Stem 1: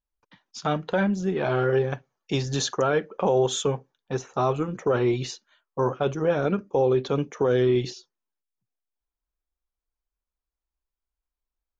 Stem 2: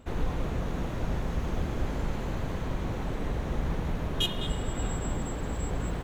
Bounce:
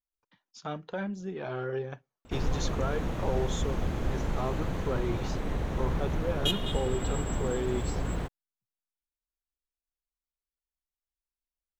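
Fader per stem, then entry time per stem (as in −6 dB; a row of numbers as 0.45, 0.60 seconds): −11.0, 0.0 decibels; 0.00, 2.25 seconds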